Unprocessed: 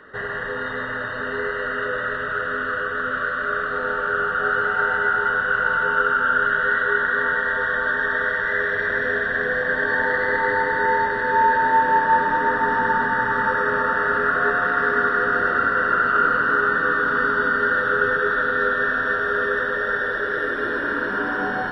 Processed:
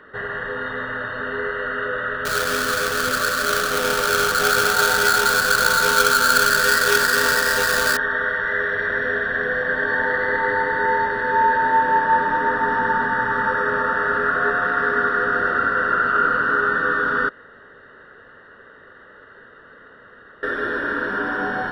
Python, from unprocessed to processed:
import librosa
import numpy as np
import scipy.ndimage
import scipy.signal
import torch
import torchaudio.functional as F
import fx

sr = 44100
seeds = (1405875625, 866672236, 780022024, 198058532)

y = fx.halfwave_hold(x, sr, at=(2.25, 7.97))
y = fx.edit(y, sr, fx.room_tone_fill(start_s=17.29, length_s=3.14), tone=tone)